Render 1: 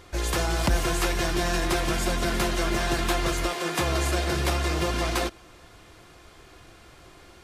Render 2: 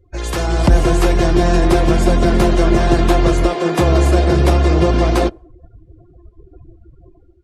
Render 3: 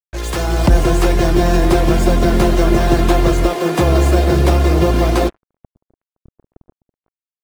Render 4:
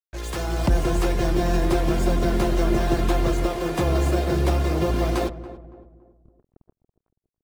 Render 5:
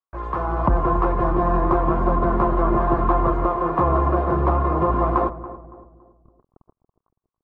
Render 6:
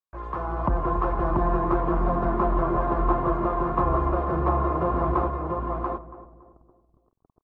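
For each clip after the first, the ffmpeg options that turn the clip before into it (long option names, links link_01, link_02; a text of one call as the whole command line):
ffmpeg -i in.wav -filter_complex "[0:a]afftdn=noise_reduction=36:noise_floor=-41,acrossover=split=770|5000[link_01][link_02][link_03];[link_01]dynaudnorm=framelen=220:gausssize=5:maxgain=11dB[link_04];[link_04][link_02][link_03]amix=inputs=3:normalize=0,volume=3.5dB" out.wav
ffmpeg -i in.wav -af "acrusher=bits=4:mix=0:aa=0.5" out.wav
ffmpeg -i in.wav -filter_complex "[0:a]asplit=2[link_01][link_02];[link_02]adelay=281,lowpass=frequency=970:poles=1,volume=-13dB,asplit=2[link_03][link_04];[link_04]adelay=281,lowpass=frequency=970:poles=1,volume=0.43,asplit=2[link_05][link_06];[link_06]adelay=281,lowpass=frequency=970:poles=1,volume=0.43,asplit=2[link_07][link_08];[link_08]adelay=281,lowpass=frequency=970:poles=1,volume=0.43[link_09];[link_01][link_03][link_05][link_07][link_09]amix=inputs=5:normalize=0,volume=-8.5dB" out.wav
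ffmpeg -i in.wav -af "lowpass=frequency=1100:width_type=q:width=6.3" out.wav
ffmpeg -i in.wav -af "aecho=1:1:685:0.668,volume=-5.5dB" out.wav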